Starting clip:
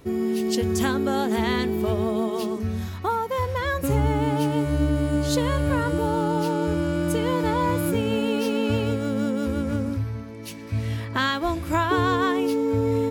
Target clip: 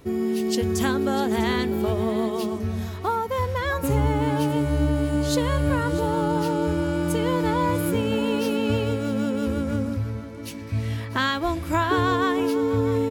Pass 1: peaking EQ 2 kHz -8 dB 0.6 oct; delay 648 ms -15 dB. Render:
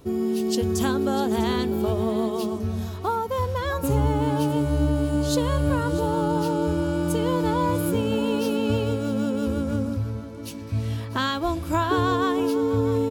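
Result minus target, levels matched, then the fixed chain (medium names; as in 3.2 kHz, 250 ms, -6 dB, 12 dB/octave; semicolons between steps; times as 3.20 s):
2 kHz band -3.5 dB
delay 648 ms -15 dB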